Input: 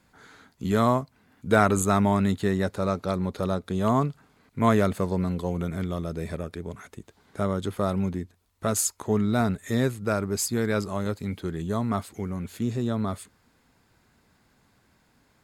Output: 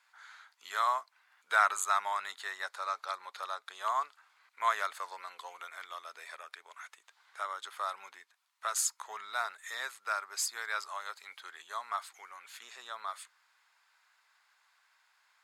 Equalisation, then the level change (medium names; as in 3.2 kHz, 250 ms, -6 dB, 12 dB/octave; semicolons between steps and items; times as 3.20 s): high-pass 1 kHz 24 dB/octave; dynamic bell 2.6 kHz, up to -4 dB, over -50 dBFS, Q 2.4; treble shelf 8.2 kHz -11 dB; 0.0 dB